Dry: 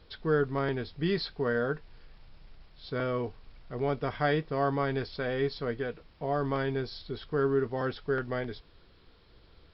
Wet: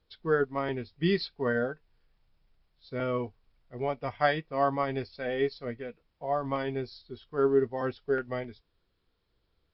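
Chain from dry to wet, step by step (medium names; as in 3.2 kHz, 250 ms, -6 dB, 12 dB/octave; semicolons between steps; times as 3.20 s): spectral noise reduction 9 dB; upward expansion 1.5:1, over -50 dBFS; trim +5 dB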